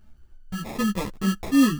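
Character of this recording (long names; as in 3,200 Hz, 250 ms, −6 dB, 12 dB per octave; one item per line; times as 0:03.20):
phaser sweep stages 4, 3.2 Hz, lowest notch 480–2,800 Hz
aliases and images of a low sample rate 1,500 Hz, jitter 0%
a shimmering, thickened sound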